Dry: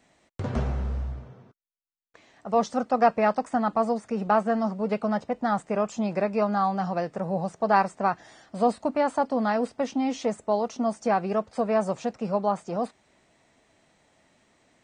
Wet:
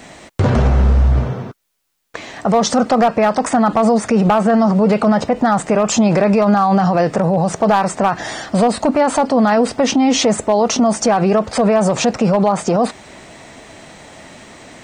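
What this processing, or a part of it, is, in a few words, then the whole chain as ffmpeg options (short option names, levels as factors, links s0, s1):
loud club master: -af "acompressor=threshold=0.0631:ratio=2.5,asoftclip=type=hard:threshold=0.112,alimiter=level_in=33.5:limit=0.891:release=50:level=0:latency=1,volume=0.531"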